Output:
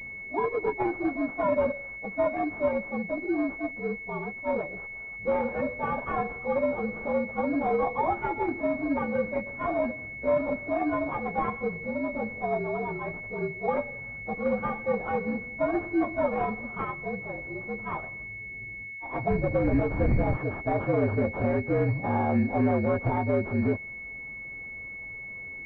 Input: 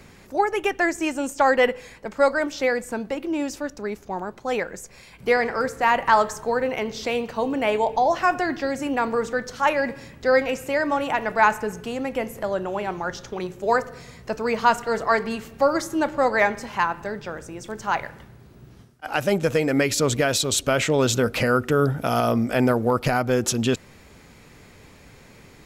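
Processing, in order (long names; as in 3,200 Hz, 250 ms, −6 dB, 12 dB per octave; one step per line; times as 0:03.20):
partials spread apart or drawn together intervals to 117%
0:19.30–0:20.35: wind on the microphone 130 Hz −19 dBFS
brickwall limiter −15.5 dBFS, peak gain reduction 10 dB
switching amplifier with a slow clock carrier 2,200 Hz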